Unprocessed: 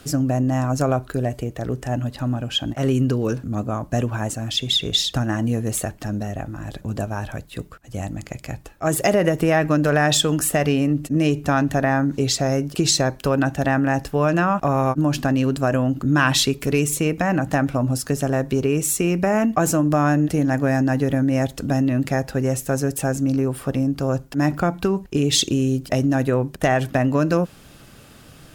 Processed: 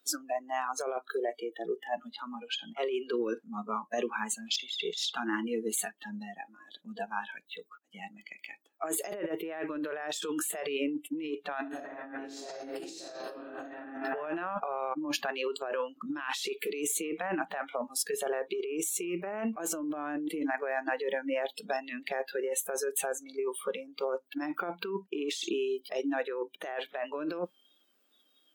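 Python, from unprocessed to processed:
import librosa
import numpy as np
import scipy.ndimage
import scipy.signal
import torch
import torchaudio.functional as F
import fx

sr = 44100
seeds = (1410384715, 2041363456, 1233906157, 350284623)

y = fx.reverb_throw(x, sr, start_s=11.59, length_s=2.22, rt60_s=1.6, drr_db=-9.5)
y = scipy.signal.sosfilt(scipy.signal.butter(6, 250.0, 'highpass', fs=sr, output='sos'), y)
y = fx.noise_reduce_blind(y, sr, reduce_db=26)
y = fx.over_compress(y, sr, threshold_db=-27.0, ratio=-1.0)
y = F.gain(torch.from_numpy(y), -8.0).numpy()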